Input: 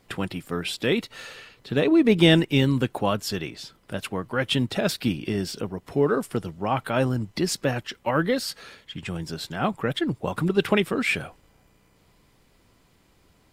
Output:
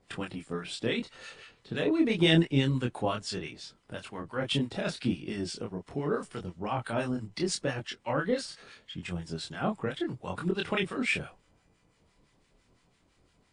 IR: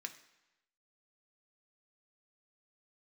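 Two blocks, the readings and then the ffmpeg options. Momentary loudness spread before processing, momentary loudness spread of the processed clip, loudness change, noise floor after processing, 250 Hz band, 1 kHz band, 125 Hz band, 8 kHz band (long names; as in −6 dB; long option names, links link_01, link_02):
15 LU, 15 LU, −6.5 dB, −69 dBFS, −6.5 dB, −7.0 dB, −6.0 dB, −6.0 dB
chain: -filter_complex "[0:a]acrossover=split=1000[link_01][link_02];[link_01]aeval=exprs='val(0)*(1-0.7/2+0.7/2*cos(2*PI*5.9*n/s))':channel_layout=same[link_03];[link_02]aeval=exprs='val(0)*(1-0.7/2-0.7/2*cos(2*PI*5.9*n/s))':channel_layout=same[link_04];[link_03][link_04]amix=inputs=2:normalize=0,flanger=delay=22.5:depth=5.6:speed=0.77" -ar 22050 -c:a libmp3lame -b:a 56k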